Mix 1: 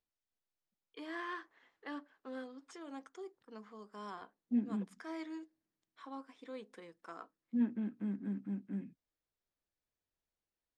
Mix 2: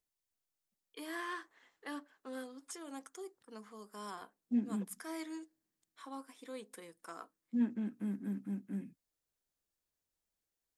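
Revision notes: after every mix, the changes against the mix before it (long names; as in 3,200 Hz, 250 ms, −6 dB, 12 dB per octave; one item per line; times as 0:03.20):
master: remove high-frequency loss of the air 140 metres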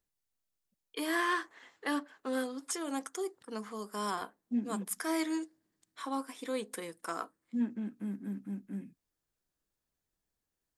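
first voice +10.5 dB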